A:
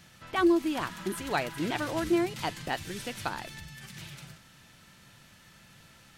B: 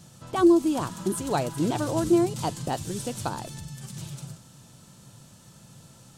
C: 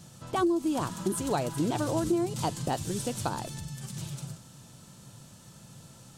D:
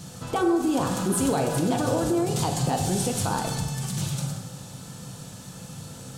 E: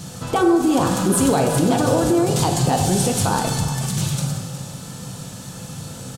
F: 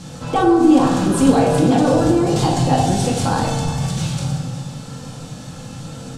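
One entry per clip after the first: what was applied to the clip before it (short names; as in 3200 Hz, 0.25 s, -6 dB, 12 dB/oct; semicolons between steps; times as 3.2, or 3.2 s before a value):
graphic EQ 125/250/500/1000/2000/8000 Hz +10/+4/+5/+4/-11/+10 dB
compressor 5:1, threshold -24 dBFS, peak gain reduction 10 dB
limiter -26 dBFS, peak gain reduction 10.5 dB; on a send at -2 dB: reverb RT60 1.4 s, pre-delay 3 ms; on the sum: gain +8.5 dB
echo 0.363 s -14 dB; gain +6.5 dB
air absorption 56 m; shoebox room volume 640 m³, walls furnished, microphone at 2.2 m; gain -1 dB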